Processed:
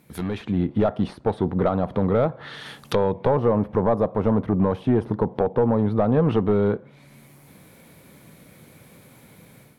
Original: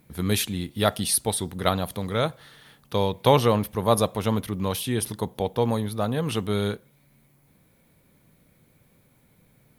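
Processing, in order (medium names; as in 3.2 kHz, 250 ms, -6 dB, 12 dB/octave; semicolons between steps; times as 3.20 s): high-pass 140 Hz 6 dB/octave; compression 4:1, threshold -27 dBFS, peak gain reduction 12.5 dB; overload inside the chain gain 26 dB; level rider gain up to 10 dB; 3.21–5.79 s: dynamic bell 3.5 kHz, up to -5 dB, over -39 dBFS, Q 0.75; low-pass that closes with the level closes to 1 kHz, closed at -24 dBFS; trim +3.5 dB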